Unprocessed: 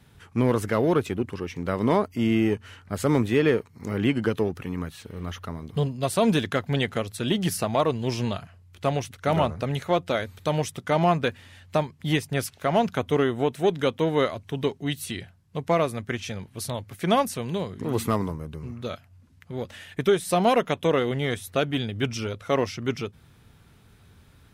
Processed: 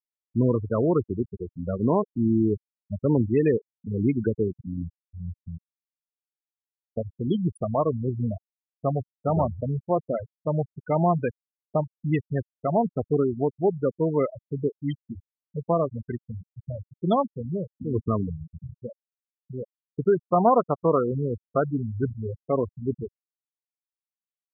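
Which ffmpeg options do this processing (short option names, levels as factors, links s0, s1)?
-filter_complex "[0:a]asettb=1/sr,asplit=3[s0][s1][s2];[s0]atrim=end=20.254[s3];[s1]atrim=start=20.25:end=22.14,asetpts=PTS-STARTPTS,afade=t=in:d=0.004:c=qsin,afade=t=out:st=1.886:d=0.004:c=qsin,lowpass=f=1200:t=q:w=2.2[s4];[s2]atrim=start=22.136[s5];[s3][s4]acrossfade=d=0.004:c1=hsin:c2=qsin[s6];[s6][s5]acrossfade=d=0.004:c1=qsin:c2=hsin,asplit=3[s7][s8][s9];[s7]atrim=end=5.67,asetpts=PTS-STARTPTS,afade=t=out:st=5.666:d=0.004:c=hsin[s10];[s8]atrim=start=5.67:end=6.97,asetpts=PTS-STARTPTS,volume=0[s11];[s9]atrim=start=6.97,asetpts=PTS-STARTPTS,afade=t=in:d=0.004:c=hsin[s12];[s10][s11][s12]concat=n=3:v=0:a=1,lowshelf=f=77:g=6,afftfilt=real='re*gte(hypot(re,im),0.178)':imag='im*gte(hypot(re,im),0.178)':win_size=1024:overlap=0.75,equalizer=f=2800:w=0.49:g=-4"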